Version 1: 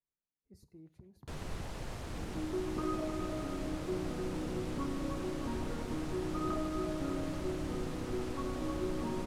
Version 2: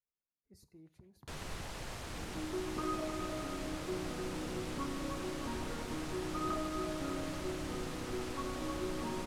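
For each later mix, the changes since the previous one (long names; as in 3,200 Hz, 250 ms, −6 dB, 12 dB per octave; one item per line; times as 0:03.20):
master: add tilt shelving filter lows −4 dB, about 790 Hz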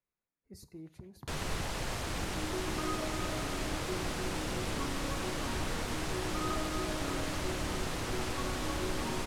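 speech +10.0 dB
first sound +7.5 dB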